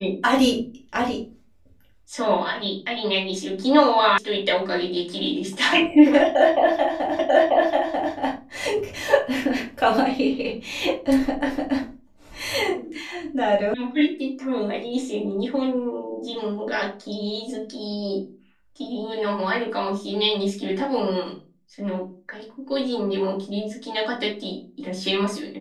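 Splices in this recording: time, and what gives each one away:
4.18 s: sound stops dead
7.19 s: repeat of the last 0.94 s
13.74 s: sound stops dead

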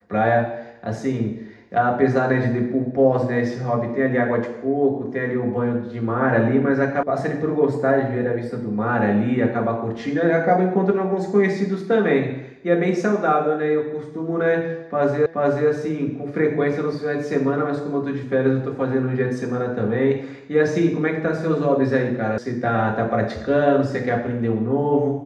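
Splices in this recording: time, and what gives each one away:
7.03 s: sound stops dead
15.26 s: repeat of the last 0.43 s
22.38 s: sound stops dead

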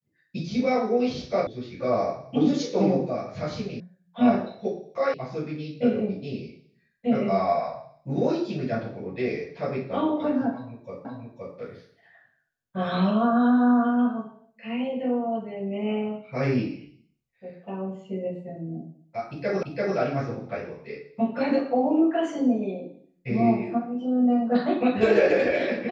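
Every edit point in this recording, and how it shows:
1.47 s: sound stops dead
3.80 s: sound stops dead
5.14 s: sound stops dead
11.05 s: repeat of the last 0.52 s
19.63 s: repeat of the last 0.34 s

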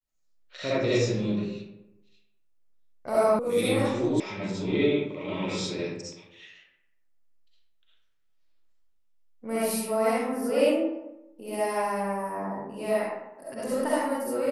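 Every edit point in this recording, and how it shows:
3.39 s: sound stops dead
4.20 s: sound stops dead

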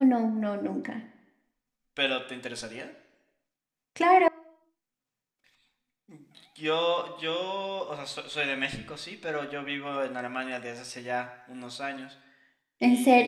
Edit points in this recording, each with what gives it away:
4.28 s: sound stops dead

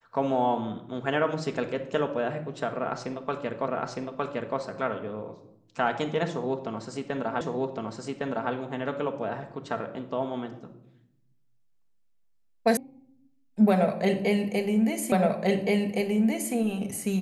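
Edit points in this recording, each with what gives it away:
3.68 s: repeat of the last 0.91 s
7.41 s: repeat of the last 1.11 s
12.77 s: sound stops dead
15.12 s: repeat of the last 1.42 s

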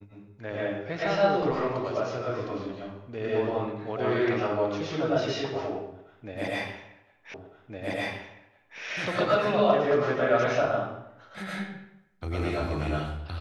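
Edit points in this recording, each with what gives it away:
7.34 s: repeat of the last 1.46 s

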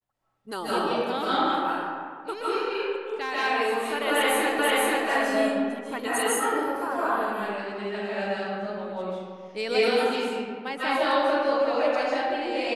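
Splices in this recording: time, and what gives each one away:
4.59 s: repeat of the last 0.48 s

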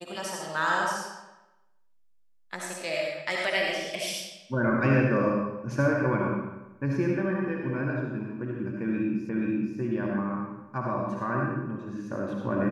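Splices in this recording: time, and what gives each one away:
9.29 s: repeat of the last 0.48 s

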